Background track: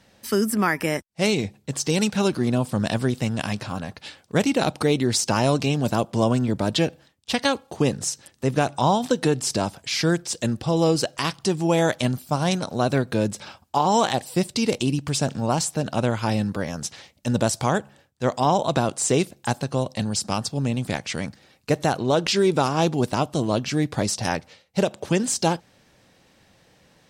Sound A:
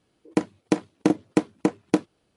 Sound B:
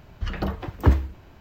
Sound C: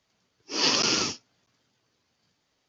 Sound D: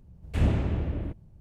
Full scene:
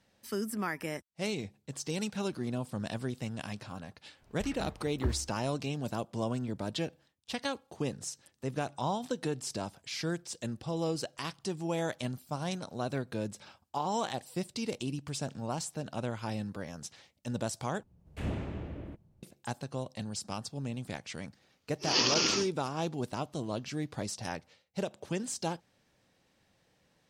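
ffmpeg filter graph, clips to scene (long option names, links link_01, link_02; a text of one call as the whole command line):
ffmpeg -i bed.wav -i cue0.wav -i cue1.wav -i cue2.wav -i cue3.wav -filter_complex "[0:a]volume=-13dB[link_01];[4:a]lowshelf=frequency=91:gain=-11.5[link_02];[link_01]asplit=2[link_03][link_04];[link_03]atrim=end=17.834[link_05];[link_02]atrim=end=1.4,asetpts=PTS-STARTPTS,volume=-6.5dB[link_06];[link_04]atrim=start=19.226[link_07];[2:a]atrim=end=1.4,asetpts=PTS-STARTPTS,volume=-15dB,afade=type=in:duration=0.05,afade=type=out:start_time=1.35:duration=0.05,adelay=4180[link_08];[3:a]atrim=end=2.68,asetpts=PTS-STARTPTS,volume=-4dB,afade=type=in:duration=0.004:curve=hsin,afade=type=out:start_time=2.676:duration=0.004:curve=hsin,adelay=940212S[link_09];[link_05][link_06]acrossfade=duration=0.004:curve1=hsin:curve2=hsin[link_10];[link_10][link_07]acrossfade=duration=0.004:curve1=hsin:curve2=hsin[link_11];[link_11][link_08][link_09]amix=inputs=3:normalize=0" out.wav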